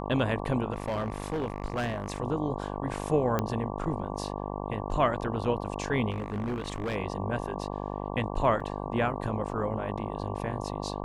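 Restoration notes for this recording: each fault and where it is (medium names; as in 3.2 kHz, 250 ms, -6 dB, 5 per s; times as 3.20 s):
buzz 50 Hz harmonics 23 -35 dBFS
0.72–2.20 s: clipped -26 dBFS
3.39 s: pop -14 dBFS
6.10–6.96 s: clipped -27.5 dBFS
8.60 s: dropout 4.1 ms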